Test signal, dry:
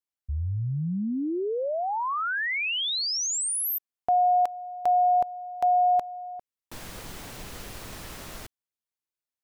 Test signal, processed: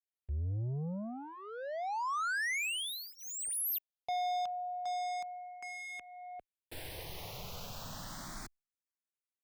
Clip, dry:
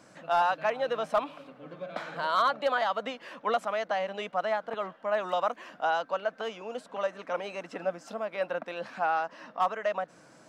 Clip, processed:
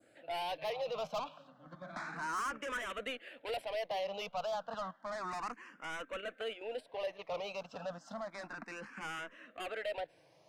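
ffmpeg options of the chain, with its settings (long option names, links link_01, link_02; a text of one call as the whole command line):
ffmpeg -i in.wav -filter_complex "[0:a]agate=range=-7dB:threshold=-43dB:ratio=16:release=41:detection=rms,adynamicequalizer=threshold=0.00794:dfrequency=2500:dqfactor=1.1:tfrequency=2500:tqfactor=1.1:attack=5:release=100:ratio=0.375:range=2.5:mode=boostabove:tftype=bell,asoftclip=type=tanh:threshold=-32.5dB,asplit=2[link_01][link_02];[link_02]afreqshift=0.31[link_03];[link_01][link_03]amix=inputs=2:normalize=1" out.wav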